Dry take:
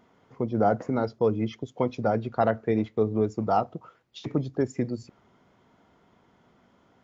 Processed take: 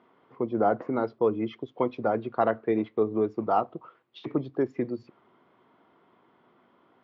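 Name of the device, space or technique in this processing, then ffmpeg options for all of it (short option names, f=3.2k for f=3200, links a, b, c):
kitchen radio: -af "highpass=170,equalizer=f=190:t=q:w=4:g=-4,equalizer=f=350:t=q:w=4:g=5,equalizer=f=1.1k:t=q:w=4:g=6,lowpass=f=3.7k:w=0.5412,lowpass=f=3.7k:w=1.3066,volume=-1.5dB"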